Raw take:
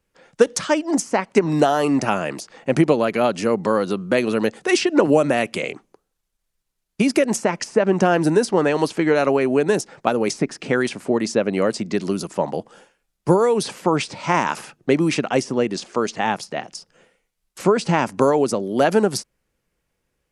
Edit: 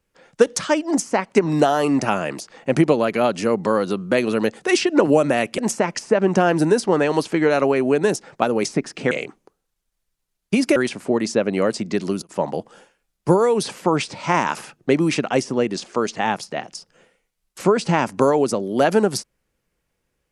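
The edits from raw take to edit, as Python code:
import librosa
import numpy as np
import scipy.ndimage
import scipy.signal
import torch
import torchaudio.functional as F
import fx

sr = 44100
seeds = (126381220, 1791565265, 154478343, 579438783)

y = fx.edit(x, sr, fx.move(start_s=5.58, length_s=1.65, to_s=10.76),
    fx.fade_down_up(start_s=11.98, length_s=0.55, db=-22.0, fade_s=0.24, curve='log'), tone=tone)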